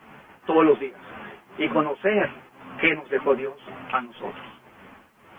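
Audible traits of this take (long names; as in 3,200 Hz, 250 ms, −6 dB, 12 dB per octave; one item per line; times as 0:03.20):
tremolo triangle 1.9 Hz, depth 90%
a quantiser's noise floor 12 bits, dither triangular
a shimmering, thickened sound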